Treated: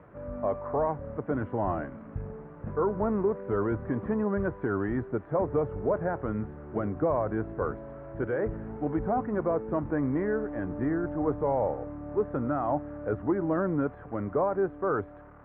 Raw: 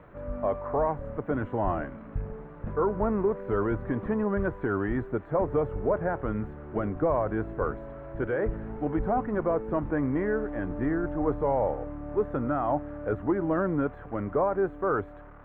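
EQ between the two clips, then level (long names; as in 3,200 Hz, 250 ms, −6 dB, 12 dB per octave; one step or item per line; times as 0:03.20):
high-pass filter 64 Hz
high-frequency loss of the air 370 metres
0.0 dB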